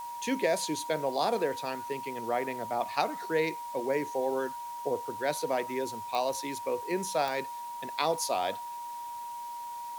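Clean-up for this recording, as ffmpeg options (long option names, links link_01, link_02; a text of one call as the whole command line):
ffmpeg -i in.wav -af "adeclick=threshold=4,bandreject=frequency=950:width=30,afftdn=noise_reduction=30:noise_floor=-40" out.wav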